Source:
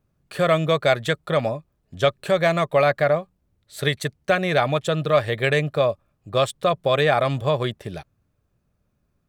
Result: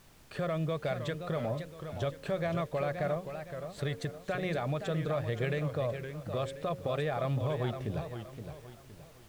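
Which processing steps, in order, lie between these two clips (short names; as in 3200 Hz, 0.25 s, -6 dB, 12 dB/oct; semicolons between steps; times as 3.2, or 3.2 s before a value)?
LPF 8300 Hz; tilt -2 dB/oct; de-hum 90.69 Hz, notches 6; compressor, threshold -21 dBFS, peak gain reduction 10 dB; limiter -17.5 dBFS, peak gain reduction 5 dB; added noise pink -53 dBFS; warbling echo 0.519 s, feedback 37%, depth 148 cents, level -8.5 dB; gain -6.5 dB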